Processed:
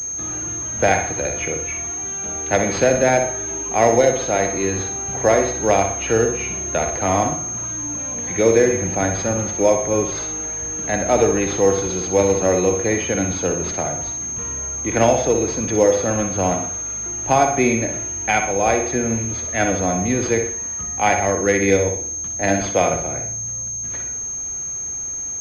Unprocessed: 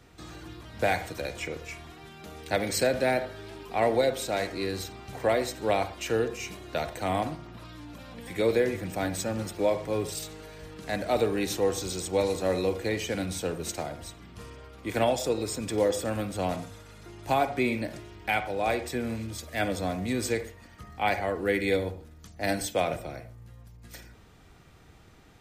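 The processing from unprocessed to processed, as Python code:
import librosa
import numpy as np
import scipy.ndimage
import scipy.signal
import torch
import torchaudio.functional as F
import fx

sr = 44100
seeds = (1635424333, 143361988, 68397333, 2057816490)

y = fx.room_flutter(x, sr, wall_m=10.5, rt60_s=0.46)
y = fx.pwm(y, sr, carrier_hz=6400.0)
y = y * librosa.db_to_amplitude(9.0)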